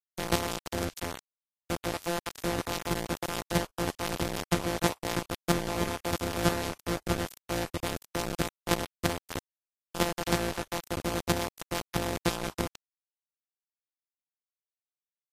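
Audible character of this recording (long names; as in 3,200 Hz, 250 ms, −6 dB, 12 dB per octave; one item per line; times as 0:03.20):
a buzz of ramps at a fixed pitch in blocks of 256 samples
chopped level 3.1 Hz, depth 65%, duty 10%
a quantiser's noise floor 6 bits, dither none
Ogg Vorbis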